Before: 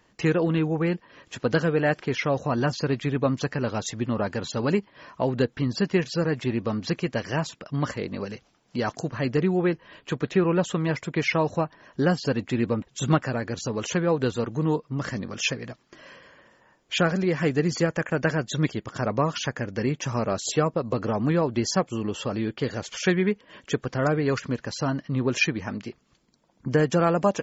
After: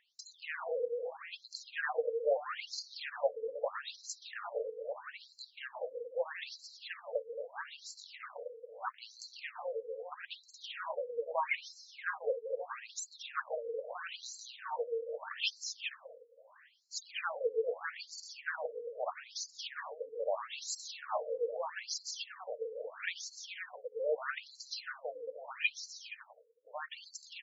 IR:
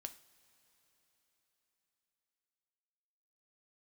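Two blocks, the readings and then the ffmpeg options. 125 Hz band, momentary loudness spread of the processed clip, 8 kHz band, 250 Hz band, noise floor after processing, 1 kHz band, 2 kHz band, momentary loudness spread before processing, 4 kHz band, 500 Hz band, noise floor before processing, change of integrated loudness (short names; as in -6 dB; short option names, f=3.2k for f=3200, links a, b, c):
under -40 dB, 12 LU, n/a, under -40 dB, -64 dBFS, -11.0 dB, -10.0 dB, 8 LU, -8.0 dB, -11.0 dB, -63 dBFS, -13.5 dB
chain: -af "aecho=1:1:230|402.5|531.9|628.9|701.7:0.631|0.398|0.251|0.158|0.1,afftfilt=real='re*(1-between(b*sr/4096,170,440))':imag='im*(1-between(b*sr/4096,170,440))':win_size=4096:overlap=0.75,afftfilt=real='re*between(b*sr/1024,360*pow(5800/360,0.5+0.5*sin(2*PI*0.78*pts/sr))/1.41,360*pow(5800/360,0.5+0.5*sin(2*PI*0.78*pts/sr))*1.41)':imag='im*between(b*sr/1024,360*pow(5800/360,0.5+0.5*sin(2*PI*0.78*pts/sr))/1.41,360*pow(5800/360,0.5+0.5*sin(2*PI*0.78*pts/sr))*1.41)':win_size=1024:overlap=0.75,volume=-4.5dB"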